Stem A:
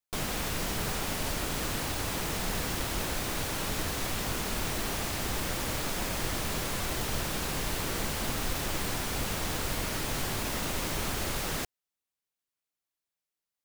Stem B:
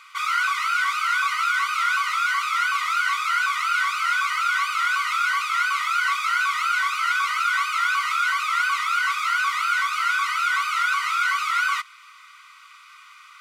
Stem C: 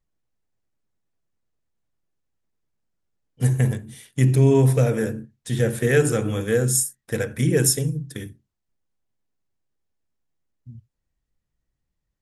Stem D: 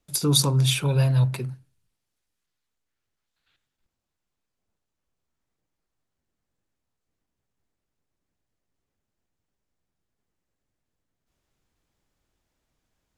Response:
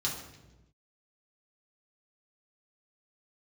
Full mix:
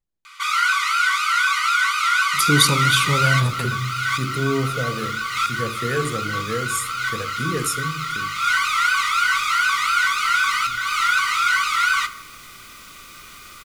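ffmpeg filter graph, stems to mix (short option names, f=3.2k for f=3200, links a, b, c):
-filter_complex "[0:a]lowshelf=f=480:g=-9.5,acrossover=split=450|3000[a][b][c];[b]acompressor=threshold=-55dB:ratio=3[d];[a][d][c]amix=inputs=3:normalize=0,adelay=2250,volume=-9dB[e];[1:a]equalizer=f=8.4k:t=o:w=1.3:g=3.5,adelay=250,volume=2.5dB,asplit=2[f][g];[g]volume=-13.5dB[h];[2:a]volume=-6.5dB,asplit=3[i][j][k];[j]volume=-18dB[l];[3:a]adelay=2250,volume=2dB,asplit=2[m][n];[n]volume=-14dB[o];[k]apad=whole_len=602227[p];[f][p]sidechaincompress=threshold=-58dB:ratio=8:attack=16:release=145[q];[4:a]atrim=start_sample=2205[r];[h][l][o]amix=inputs=3:normalize=0[s];[s][r]afir=irnorm=-1:irlink=0[t];[e][q][i][m][t]amix=inputs=5:normalize=0"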